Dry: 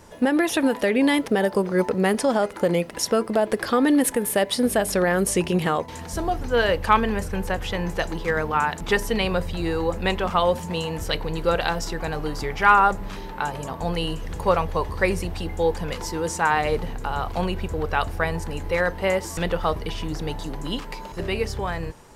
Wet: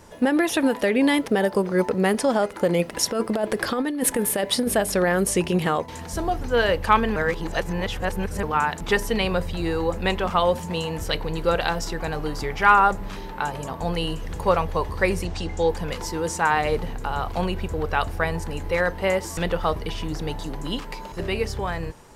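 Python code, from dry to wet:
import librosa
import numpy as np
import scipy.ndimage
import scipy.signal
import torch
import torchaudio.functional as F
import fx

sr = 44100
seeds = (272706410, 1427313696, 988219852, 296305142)

y = fx.over_compress(x, sr, threshold_db=-21.0, ratio=-0.5, at=(2.79, 4.75))
y = fx.lowpass_res(y, sr, hz=6700.0, q=2.2, at=(15.25, 15.69))
y = fx.edit(y, sr, fx.reverse_span(start_s=7.16, length_s=1.27), tone=tone)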